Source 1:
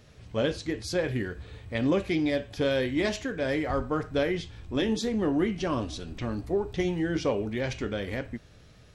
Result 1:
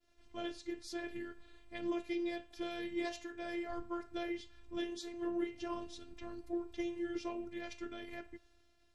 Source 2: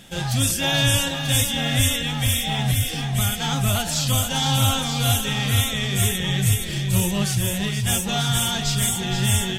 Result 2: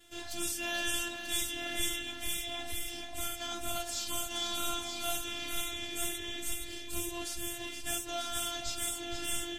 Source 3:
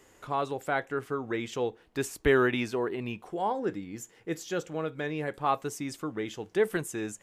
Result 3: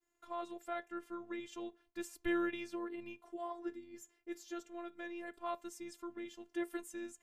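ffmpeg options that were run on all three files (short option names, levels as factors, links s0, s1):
-af "agate=range=0.0224:threshold=0.00316:ratio=3:detection=peak,afftfilt=real='hypot(re,im)*cos(PI*b)':imag='0':win_size=512:overlap=0.75,volume=0.355"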